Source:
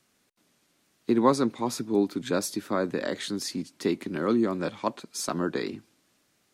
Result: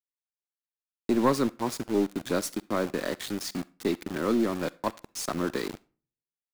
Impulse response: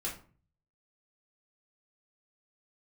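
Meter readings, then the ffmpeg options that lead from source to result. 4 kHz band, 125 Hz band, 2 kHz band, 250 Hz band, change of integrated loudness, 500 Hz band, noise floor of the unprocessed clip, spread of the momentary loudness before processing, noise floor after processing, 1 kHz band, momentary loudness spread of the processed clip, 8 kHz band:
-1.5 dB, -1.0 dB, 0.0 dB, -1.5 dB, -1.0 dB, -1.5 dB, -70 dBFS, 10 LU, under -85 dBFS, -1.5 dB, 9 LU, -1.5 dB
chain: -filter_complex "[0:a]aeval=exprs='(tanh(3.98*val(0)+0.25)-tanh(0.25))/3.98':c=same,aeval=exprs='val(0)*gte(abs(val(0)),0.0211)':c=same,asplit=2[a][b];[1:a]atrim=start_sample=2205,lowshelf=f=460:g=-10.5,adelay=44[c];[b][c]afir=irnorm=-1:irlink=0,volume=-21dB[d];[a][d]amix=inputs=2:normalize=0"

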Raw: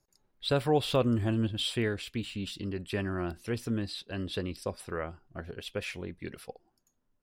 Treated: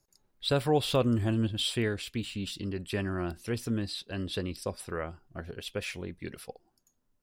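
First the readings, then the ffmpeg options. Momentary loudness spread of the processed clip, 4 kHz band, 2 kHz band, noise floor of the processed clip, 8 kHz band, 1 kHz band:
14 LU, +1.5 dB, +0.5 dB, -75 dBFS, +4.0 dB, 0.0 dB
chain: -af "bass=f=250:g=1,treble=f=4k:g=4"

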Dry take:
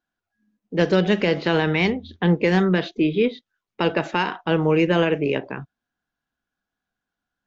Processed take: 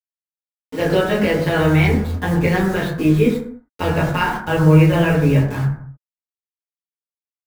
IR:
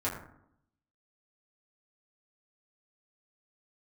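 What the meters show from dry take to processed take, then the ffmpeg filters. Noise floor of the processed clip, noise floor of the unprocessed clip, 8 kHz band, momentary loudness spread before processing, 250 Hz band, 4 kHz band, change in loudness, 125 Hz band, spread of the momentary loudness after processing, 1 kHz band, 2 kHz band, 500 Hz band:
under -85 dBFS, under -85 dBFS, n/a, 6 LU, +4.0 dB, -0.5 dB, +4.0 dB, +9.5 dB, 11 LU, +3.5 dB, +3.0 dB, +2.0 dB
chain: -filter_complex "[0:a]asubboost=boost=9.5:cutoff=110,acrusher=bits=5:mix=0:aa=0.000001[a];[1:a]atrim=start_sample=2205,afade=t=out:st=0.37:d=0.01,atrim=end_sample=16758[b];[a][b]afir=irnorm=-1:irlink=0,volume=-2.5dB"

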